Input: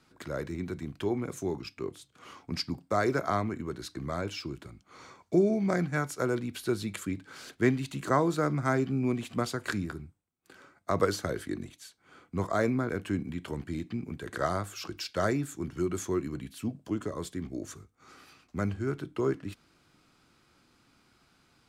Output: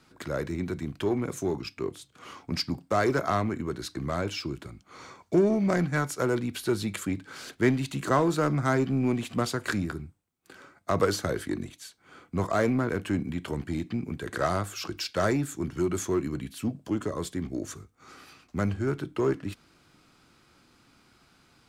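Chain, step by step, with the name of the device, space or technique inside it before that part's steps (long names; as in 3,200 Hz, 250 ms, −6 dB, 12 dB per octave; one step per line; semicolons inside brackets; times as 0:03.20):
parallel distortion (in parallel at −4 dB: hard clipping −28.5 dBFS, distortion −7 dB)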